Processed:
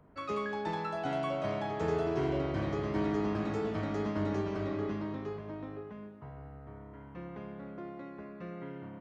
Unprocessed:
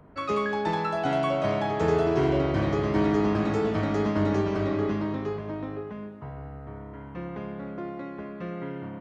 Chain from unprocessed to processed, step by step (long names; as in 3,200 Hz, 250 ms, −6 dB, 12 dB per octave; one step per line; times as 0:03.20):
0:08.09–0:08.61: notch filter 3,200 Hz, Q 11
level −8 dB